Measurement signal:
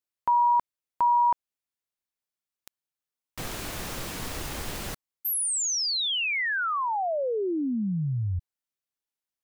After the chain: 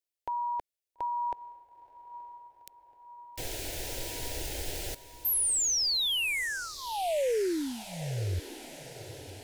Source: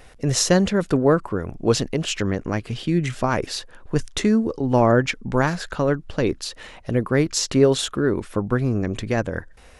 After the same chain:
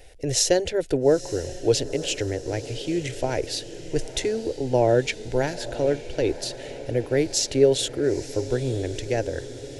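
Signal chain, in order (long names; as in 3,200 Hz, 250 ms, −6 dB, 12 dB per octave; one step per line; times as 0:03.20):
phaser with its sweep stopped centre 480 Hz, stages 4
feedback delay with all-pass diffusion 924 ms, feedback 65%, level −15 dB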